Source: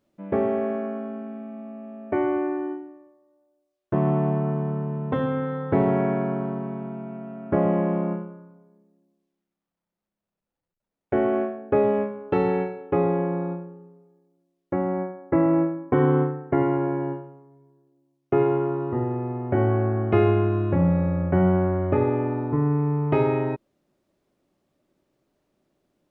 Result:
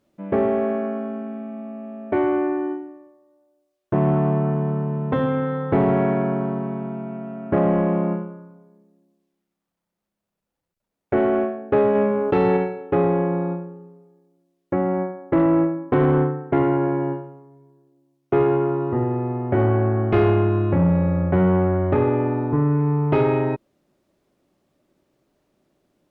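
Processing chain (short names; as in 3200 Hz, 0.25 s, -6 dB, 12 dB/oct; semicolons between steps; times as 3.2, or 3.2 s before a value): added harmonics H 5 -18 dB, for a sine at -7 dBFS; 11.95–12.57 fast leveller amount 70%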